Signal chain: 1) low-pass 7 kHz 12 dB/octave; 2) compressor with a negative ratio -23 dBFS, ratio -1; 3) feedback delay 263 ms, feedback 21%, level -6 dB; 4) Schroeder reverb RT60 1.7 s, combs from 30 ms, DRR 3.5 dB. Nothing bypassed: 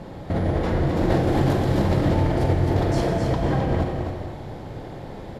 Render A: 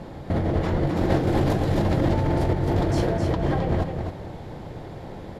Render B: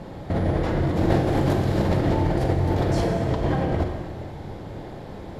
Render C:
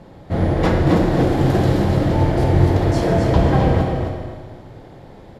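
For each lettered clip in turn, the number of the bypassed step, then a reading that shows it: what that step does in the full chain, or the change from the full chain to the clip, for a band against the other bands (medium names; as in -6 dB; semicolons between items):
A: 4, echo-to-direct -1.0 dB to -6.0 dB; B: 3, echo-to-direct -1.0 dB to -3.5 dB; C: 2, crest factor change -2.0 dB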